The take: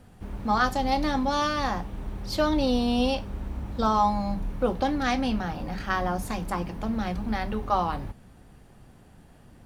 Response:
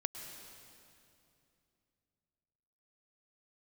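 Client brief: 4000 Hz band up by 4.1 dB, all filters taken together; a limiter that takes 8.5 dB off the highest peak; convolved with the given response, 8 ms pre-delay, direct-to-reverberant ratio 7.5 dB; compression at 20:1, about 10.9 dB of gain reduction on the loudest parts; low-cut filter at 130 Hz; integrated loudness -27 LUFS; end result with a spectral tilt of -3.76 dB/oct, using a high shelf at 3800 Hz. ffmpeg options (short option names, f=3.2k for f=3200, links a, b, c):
-filter_complex "[0:a]highpass=130,highshelf=f=3.8k:g=-5,equalizer=f=4k:t=o:g=8,acompressor=threshold=-29dB:ratio=20,alimiter=level_in=2dB:limit=-24dB:level=0:latency=1,volume=-2dB,asplit=2[a][b];[1:a]atrim=start_sample=2205,adelay=8[c];[b][c]afir=irnorm=-1:irlink=0,volume=-7.5dB[d];[a][d]amix=inputs=2:normalize=0,volume=8.5dB"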